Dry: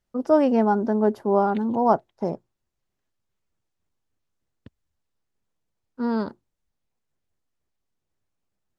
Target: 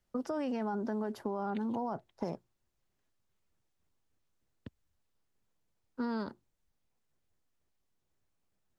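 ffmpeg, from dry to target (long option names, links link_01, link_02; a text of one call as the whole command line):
ffmpeg -i in.wav -filter_complex "[0:a]alimiter=limit=-17.5dB:level=0:latency=1:release=19,acrossover=split=210|1200[link_01][link_02][link_03];[link_01]acompressor=threshold=-43dB:ratio=4[link_04];[link_02]acompressor=threshold=-38dB:ratio=4[link_05];[link_03]acompressor=threshold=-45dB:ratio=4[link_06];[link_04][link_05][link_06]amix=inputs=3:normalize=0" out.wav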